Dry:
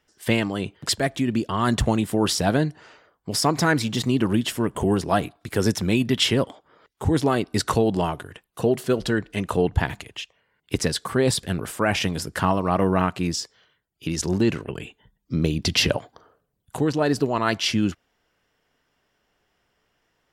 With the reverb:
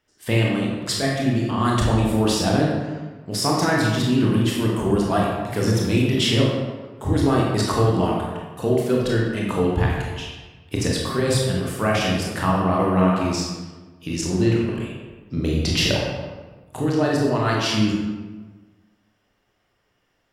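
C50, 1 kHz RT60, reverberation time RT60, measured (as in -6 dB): 0.5 dB, 1.3 s, 1.3 s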